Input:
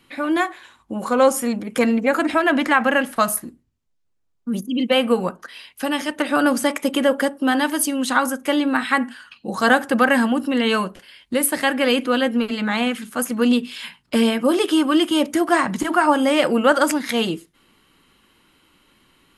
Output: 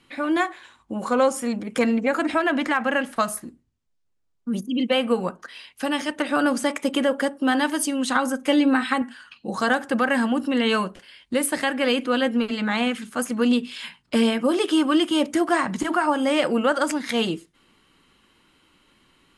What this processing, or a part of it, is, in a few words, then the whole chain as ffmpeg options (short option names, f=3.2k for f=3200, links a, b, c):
clipper into limiter: -filter_complex "[0:a]lowpass=f=10k:w=0.5412,lowpass=f=10k:w=1.3066,asoftclip=type=hard:threshold=-4dB,alimiter=limit=-8.5dB:level=0:latency=1:release=359,asettb=1/sr,asplit=3[a][b][c];[a]atrim=end=8.154[d];[b]atrim=start=8.15:end=9.02,asetpts=PTS-STARTPTS,afade=t=in:d=0.004:c=qsin,afade=t=out:st=0.866:d=0.004:c=qsin,aecho=1:1:3.9:0.68,atrim=end_sample=38367[e];[c]atrim=start=9.016[f];[d][e]acrossfade=d=0.004:c1=hsin:c2=qsin[g];[g][f]acrossfade=d=0.004:c1=qsin:c2=hsin,volume=-2dB"